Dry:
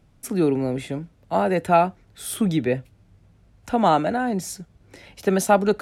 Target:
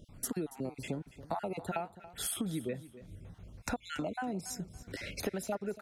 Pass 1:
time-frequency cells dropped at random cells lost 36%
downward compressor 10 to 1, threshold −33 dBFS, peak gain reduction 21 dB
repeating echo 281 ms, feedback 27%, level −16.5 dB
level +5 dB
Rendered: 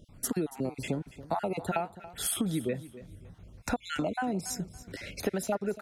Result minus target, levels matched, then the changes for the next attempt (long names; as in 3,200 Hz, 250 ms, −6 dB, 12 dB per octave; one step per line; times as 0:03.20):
downward compressor: peak gain reduction −5.5 dB
change: downward compressor 10 to 1, threshold −39 dBFS, peak gain reduction 26.5 dB